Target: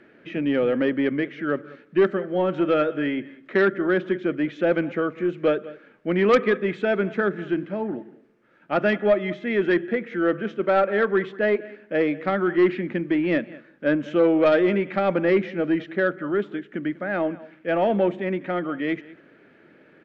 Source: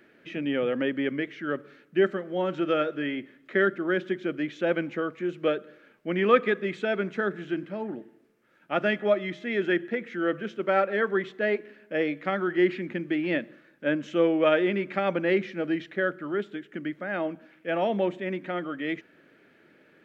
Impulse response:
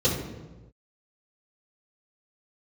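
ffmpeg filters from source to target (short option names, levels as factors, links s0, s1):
-af "aemphasis=mode=reproduction:type=75fm,aecho=1:1:195:0.0944,aeval=exprs='0.473*(cos(1*acos(clip(val(0)/0.473,-1,1)))-cos(1*PI/2))+0.075*(cos(5*acos(clip(val(0)/0.473,-1,1)))-cos(5*PI/2))+0.00473*(cos(8*acos(clip(val(0)/0.473,-1,1)))-cos(8*PI/2))':c=same"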